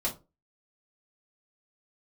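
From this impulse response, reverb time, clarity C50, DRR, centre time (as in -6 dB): 0.30 s, 13.5 dB, -5.5 dB, 15 ms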